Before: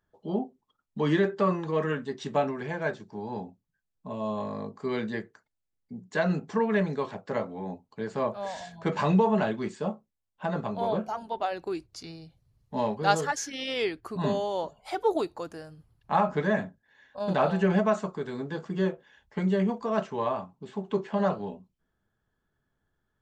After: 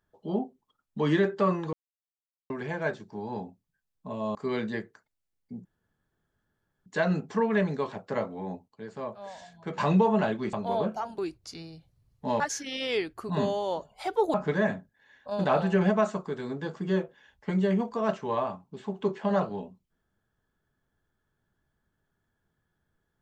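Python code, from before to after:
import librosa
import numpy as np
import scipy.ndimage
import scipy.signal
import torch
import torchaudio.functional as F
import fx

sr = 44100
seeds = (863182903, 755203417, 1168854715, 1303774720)

y = fx.edit(x, sr, fx.silence(start_s=1.73, length_s=0.77),
    fx.cut(start_s=4.35, length_s=0.4),
    fx.insert_room_tone(at_s=6.05, length_s=1.21),
    fx.clip_gain(start_s=7.87, length_s=1.1, db=-7.5),
    fx.cut(start_s=9.72, length_s=0.93),
    fx.cut(start_s=11.3, length_s=0.37),
    fx.cut(start_s=12.89, length_s=0.38),
    fx.cut(start_s=15.21, length_s=1.02), tone=tone)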